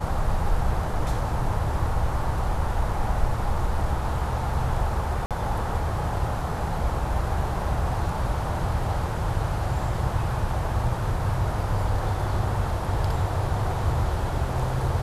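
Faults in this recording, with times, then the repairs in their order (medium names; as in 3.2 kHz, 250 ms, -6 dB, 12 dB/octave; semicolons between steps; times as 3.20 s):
5.26–5.31 s: dropout 47 ms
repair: interpolate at 5.26 s, 47 ms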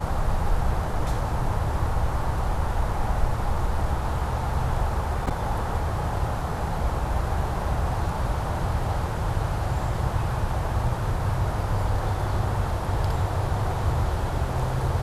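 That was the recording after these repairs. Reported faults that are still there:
nothing left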